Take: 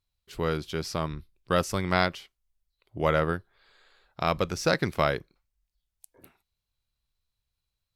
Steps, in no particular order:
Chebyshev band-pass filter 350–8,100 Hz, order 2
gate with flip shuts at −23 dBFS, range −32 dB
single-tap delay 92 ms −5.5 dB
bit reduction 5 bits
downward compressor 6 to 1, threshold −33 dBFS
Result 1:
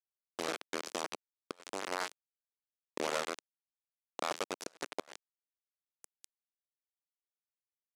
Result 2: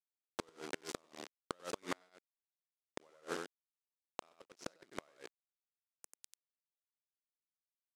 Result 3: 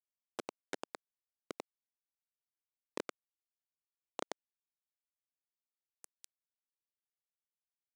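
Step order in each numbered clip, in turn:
downward compressor, then single-tap delay, then bit reduction, then gate with flip, then Chebyshev band-pass filter
bit reduction, then Chebyshev band-pass filter, then downward compressor, then single-tap delay, then gate with flip
gate with flip, then single-tap delay, then downward compressor, then bit reduction, then Chebyshev band-pass filter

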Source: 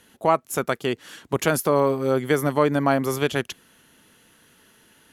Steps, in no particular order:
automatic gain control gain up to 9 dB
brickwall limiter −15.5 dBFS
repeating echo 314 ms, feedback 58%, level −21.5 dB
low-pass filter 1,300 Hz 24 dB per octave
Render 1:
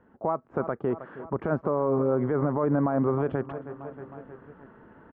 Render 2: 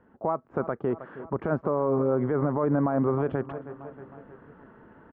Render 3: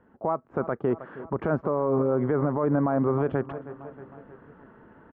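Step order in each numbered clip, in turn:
repeating echo, then automatic gain control, then brickwall limiter, then low-pass filter
automatic gain control, then repeating echo, then brickwall limiter, then low-pass filter
low-pass filter, then automatic gain control, then repeating echo, then brickwall limiter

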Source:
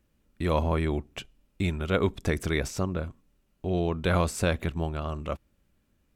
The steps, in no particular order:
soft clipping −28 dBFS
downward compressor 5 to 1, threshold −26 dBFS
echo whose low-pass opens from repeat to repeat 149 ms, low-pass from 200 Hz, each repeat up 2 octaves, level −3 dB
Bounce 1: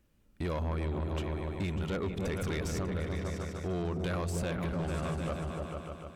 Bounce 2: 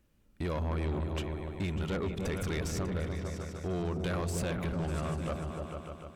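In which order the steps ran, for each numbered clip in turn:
echo whose low-pass opens from repeat to repeat, then downward compressor, then soft clipping
downward compressor, then echo whose low-pass opens from repeat to repeat, then soft clipping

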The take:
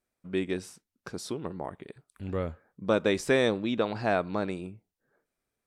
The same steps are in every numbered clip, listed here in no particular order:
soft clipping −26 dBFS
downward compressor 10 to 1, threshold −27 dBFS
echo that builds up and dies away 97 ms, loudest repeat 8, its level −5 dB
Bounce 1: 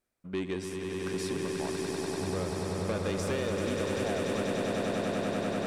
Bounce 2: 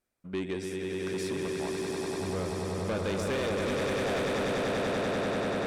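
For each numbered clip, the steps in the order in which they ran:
soft clipping, then echo that builds up and dies away, then downward compressor
echo that builds up and dies away, then soft clipping, then downward compressor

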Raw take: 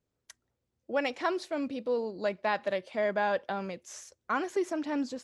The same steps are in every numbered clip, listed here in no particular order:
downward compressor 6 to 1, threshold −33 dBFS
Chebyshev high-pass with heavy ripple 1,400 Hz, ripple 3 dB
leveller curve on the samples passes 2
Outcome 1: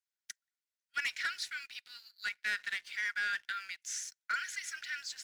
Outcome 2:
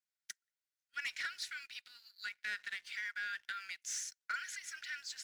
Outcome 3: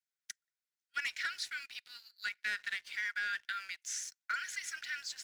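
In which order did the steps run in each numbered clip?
Chebyshev high-pass with heavy ripple, then downward compressor, then leveller curve on the samples
downward compressor, then Chebyshev high-pass with heavy ripple, then leveller curve on the samples
Chebyshev high-pass with heavy ripple, then leveller curve on the samples, then downward compressor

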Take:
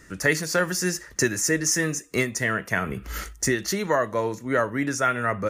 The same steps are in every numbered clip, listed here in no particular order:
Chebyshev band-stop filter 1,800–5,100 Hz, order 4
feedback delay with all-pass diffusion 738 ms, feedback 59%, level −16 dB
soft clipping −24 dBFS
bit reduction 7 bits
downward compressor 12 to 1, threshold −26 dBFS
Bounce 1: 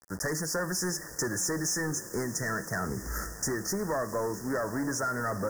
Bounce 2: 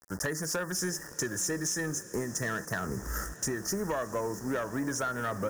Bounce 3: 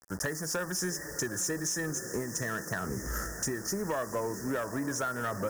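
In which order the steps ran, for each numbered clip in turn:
soft clipping, then feedback delay with all-pass diffusion, then bit reduction, then Chebyshev band-stop filter, then downward compressor
bit reduction, then Chebyshev band-stop filter, then downward compressor, then soft clipping, then feedback delay with all-pass diffusion
feedback delay with all-pass diffusion, then downward compressor, then bit reduction, then Chebyshev band-stop filter, then soft clipping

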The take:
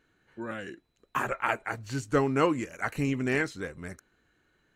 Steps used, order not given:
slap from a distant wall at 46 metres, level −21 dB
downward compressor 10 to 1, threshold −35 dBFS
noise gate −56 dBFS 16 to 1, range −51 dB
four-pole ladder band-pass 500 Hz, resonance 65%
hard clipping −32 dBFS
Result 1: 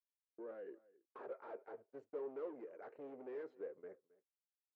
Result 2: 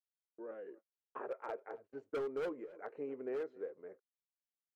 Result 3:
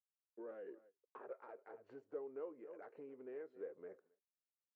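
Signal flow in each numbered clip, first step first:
hard clipping, then downward compressor, then four-pole ladder band-pass, then noise gate, then slap from a distant wall
four-pole ladder band-pass, then hard clipping, then downward compressor, then slap from a distant wall, then noise gate
slap from a distant wall, then noise gate, then downward compressor, then hard clipping, then four-pole ladder band-pass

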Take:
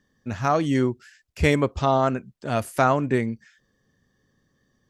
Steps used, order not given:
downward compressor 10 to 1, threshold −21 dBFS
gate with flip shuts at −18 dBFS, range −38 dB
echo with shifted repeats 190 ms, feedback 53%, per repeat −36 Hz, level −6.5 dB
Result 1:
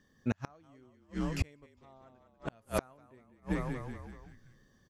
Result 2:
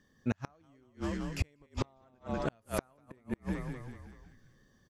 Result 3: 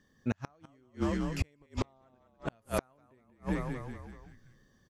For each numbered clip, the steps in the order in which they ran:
echo with shifted repeats, then gate with flip, then downward compressor
downward compressor, then echo with shifted repeats, then gate with flip
echo with shifted repeats, then downward compressor, then gate with flip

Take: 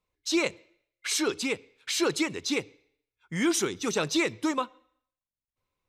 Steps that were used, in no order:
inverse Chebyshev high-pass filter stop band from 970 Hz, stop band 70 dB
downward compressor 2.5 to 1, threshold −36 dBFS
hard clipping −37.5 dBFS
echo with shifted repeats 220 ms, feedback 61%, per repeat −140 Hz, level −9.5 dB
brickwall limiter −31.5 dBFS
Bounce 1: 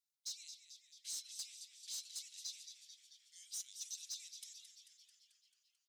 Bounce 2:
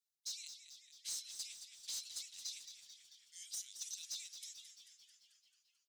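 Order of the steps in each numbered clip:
brickwall limiter, then downward compressor, then inverse Chebyshev high-pass filter, then echo with shifted repeats, then hard clipping
downward compressor, then inverse Chebyshev high-pass filter, then brickwall limiter, then hard clipping, then echo with shifted repeats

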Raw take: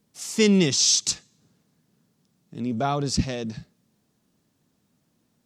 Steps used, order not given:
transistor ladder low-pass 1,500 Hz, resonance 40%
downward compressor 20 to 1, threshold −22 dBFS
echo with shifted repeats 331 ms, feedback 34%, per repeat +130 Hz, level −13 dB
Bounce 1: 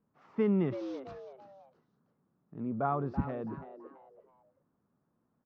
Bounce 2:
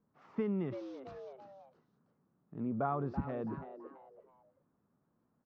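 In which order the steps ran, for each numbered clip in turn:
echo with shifted repeats, then transistor ladder low-pass, then downward compressor
echo with shifted repeats, then downward compressor, then transistor ladder low-pass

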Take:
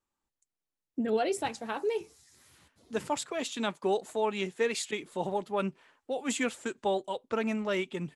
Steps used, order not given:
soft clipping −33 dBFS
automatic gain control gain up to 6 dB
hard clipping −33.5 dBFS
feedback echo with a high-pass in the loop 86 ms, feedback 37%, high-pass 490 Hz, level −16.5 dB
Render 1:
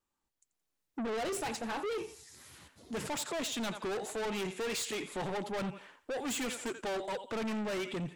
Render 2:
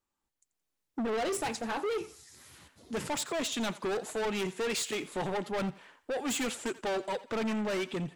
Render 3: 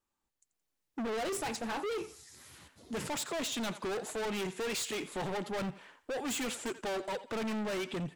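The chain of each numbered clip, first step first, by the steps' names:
automatic gain control, then feedback echo with a high-pass in the loop, then soft clipping, then hard clipping
hard clipping, then soft clipping, then automatic gain control, then feedback echo with a high-pass in the loop
soft clipping, then feedback echo with a high-pass in the loop, then automatic gain control, then hard clipping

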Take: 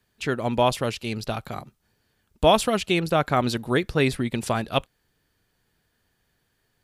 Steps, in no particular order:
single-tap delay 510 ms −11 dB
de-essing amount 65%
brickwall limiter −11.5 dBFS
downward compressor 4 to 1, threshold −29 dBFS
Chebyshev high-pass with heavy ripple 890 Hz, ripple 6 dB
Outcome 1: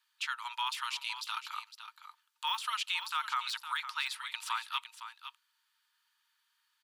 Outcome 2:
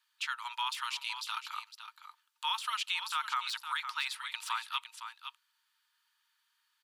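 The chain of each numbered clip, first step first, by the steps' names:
de-essing, then brickwall limiter, then Chebyshev high-pass with heavy ripple, then downward compressor, then single-tap delay
brickwall limiter, then single-tap delay, then de-essing, then Chebyshev high-pass with heavy ripple, then downward compressor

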